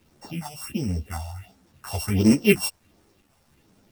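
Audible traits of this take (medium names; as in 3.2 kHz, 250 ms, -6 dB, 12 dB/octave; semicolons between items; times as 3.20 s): a buzz of ramps at a fixed pitch in blocks of 16 samples; phasing stages 4, 1.4 Hz, lowest notch 290–3400 Hz; a quantiser's noise floor 10-bit, dither none; a shimmering, thickened sound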